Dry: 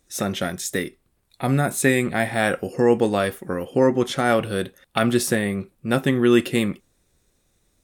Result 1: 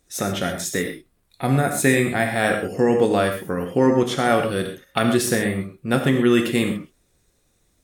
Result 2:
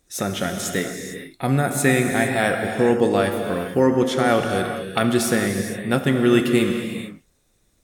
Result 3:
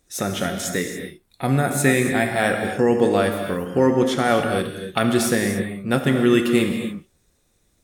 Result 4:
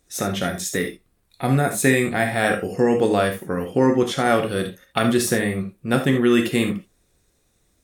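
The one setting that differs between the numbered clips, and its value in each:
gated-style reverb, gate: 150 ms, 480 ms, 310 ms, 100 ms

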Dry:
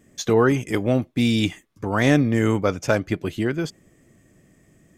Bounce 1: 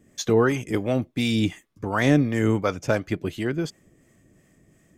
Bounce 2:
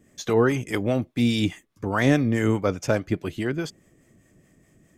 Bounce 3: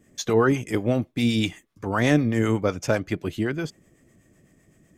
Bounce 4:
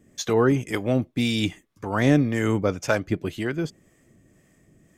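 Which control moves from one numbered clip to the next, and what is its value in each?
harmonic tremolo, rate: 2.8 Hz, 4.8 Hz, 7.9 Hz, 1.9 Hz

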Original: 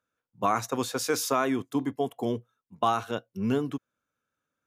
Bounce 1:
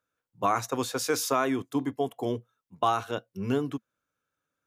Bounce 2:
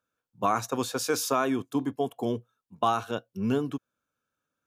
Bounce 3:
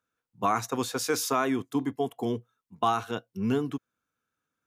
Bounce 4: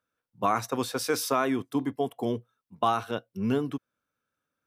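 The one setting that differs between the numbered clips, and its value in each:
band-stop, frequency: 220 Hz, 2 kHz, 570 Hz, 6.8 kHz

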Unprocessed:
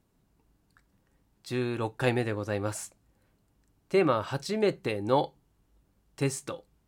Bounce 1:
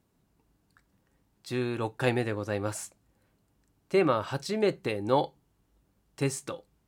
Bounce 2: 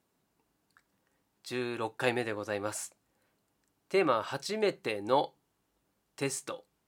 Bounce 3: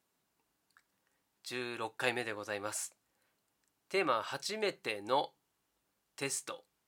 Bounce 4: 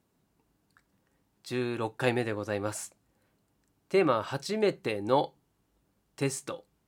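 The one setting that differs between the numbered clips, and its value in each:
high-pass, cutoff frequency: 53 Hz, 440 Hz, 1.2 kHz, 150 Hz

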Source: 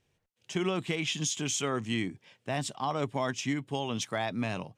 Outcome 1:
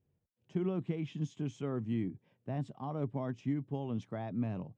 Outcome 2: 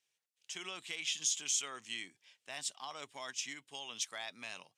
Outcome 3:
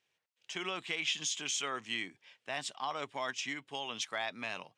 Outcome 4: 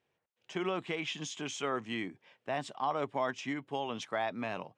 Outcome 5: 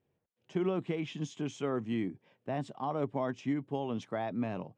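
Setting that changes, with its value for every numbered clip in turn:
band-pass filter, frequency: 130 Hz, 7.6 kHz, 2.7 kHz, 940 Hz, 340 Hz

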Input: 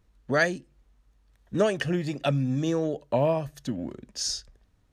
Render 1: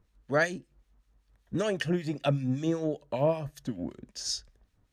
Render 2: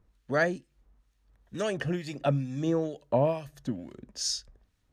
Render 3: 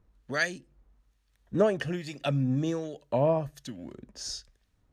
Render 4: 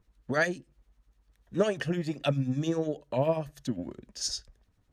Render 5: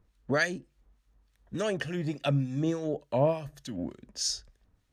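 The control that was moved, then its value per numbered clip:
harmonic tremolo, rate: 5.2 Hz, 2.2 Hz, 1.2 Hz, 10 Hz, 3.4 Hz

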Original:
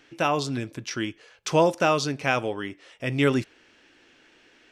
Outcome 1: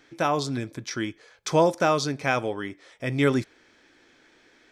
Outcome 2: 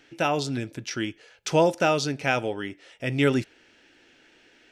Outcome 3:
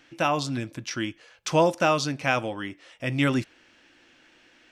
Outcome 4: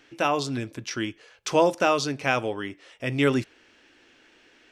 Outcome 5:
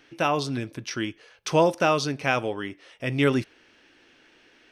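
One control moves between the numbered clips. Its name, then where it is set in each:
band-stop, frequency: 2.8 kHz, 1.1 kHz, 420 Hz, 160 Hz, 7.3 kHz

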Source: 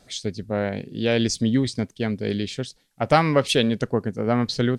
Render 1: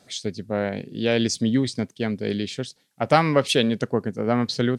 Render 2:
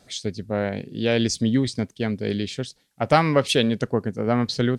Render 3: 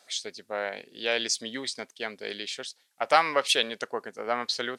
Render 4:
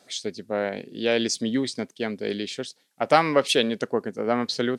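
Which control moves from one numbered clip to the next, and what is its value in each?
high-pass, cutoff frequency: 110 Hz, 41 Hz, 740 Hz, 280 Hz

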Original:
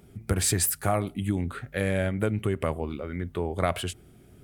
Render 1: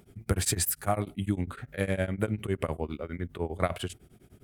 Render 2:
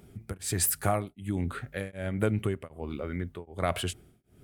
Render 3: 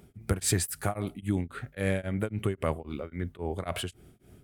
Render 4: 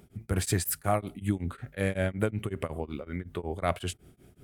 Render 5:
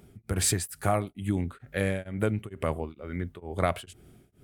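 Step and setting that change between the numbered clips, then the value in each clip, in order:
tremolo of two beating tones, nulls at: 9.9 Hz, 1.3 Hz, 3.7 Hz, 5.4 Hz, 2.2 Hz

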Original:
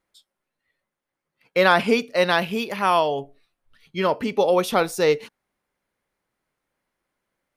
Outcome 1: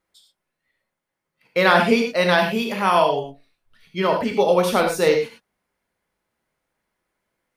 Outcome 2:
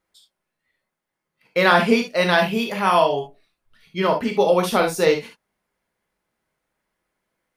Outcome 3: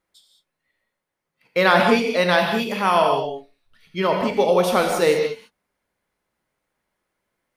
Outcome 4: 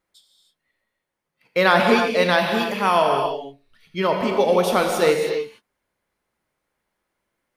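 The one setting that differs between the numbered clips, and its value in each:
gated-style reverb, gate: 130 ms, 90 ms, 230 ms, 340 ms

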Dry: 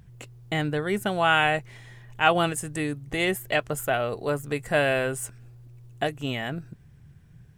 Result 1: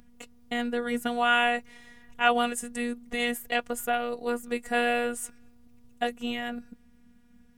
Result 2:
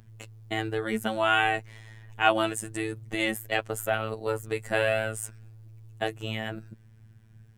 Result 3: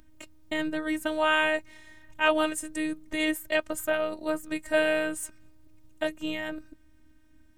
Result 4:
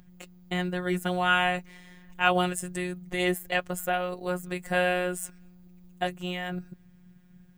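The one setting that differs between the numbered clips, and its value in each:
robot voice, frequency: 240 Hz, 110 Hz, 310 Hz, 180 Hz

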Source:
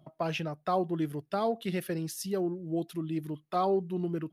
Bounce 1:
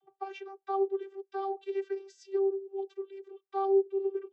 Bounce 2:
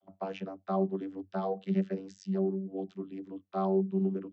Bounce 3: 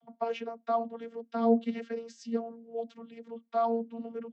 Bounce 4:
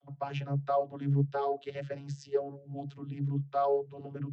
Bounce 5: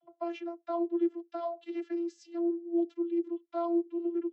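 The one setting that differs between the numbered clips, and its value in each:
vocoder, frequency: 390 Hz, 96 Hz, 230 Hz, 140 Hz, 340 Hz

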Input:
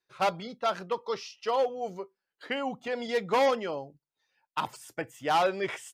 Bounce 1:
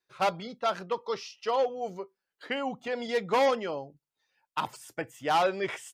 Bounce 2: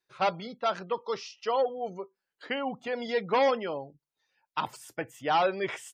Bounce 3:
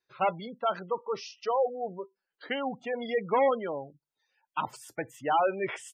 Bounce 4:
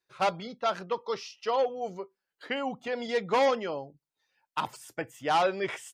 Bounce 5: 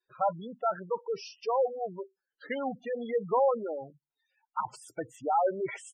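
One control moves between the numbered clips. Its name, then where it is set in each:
spectral gate, under each frame's peak: -60 dB, -35 dB, -20 dB, -50 dB, -10 dB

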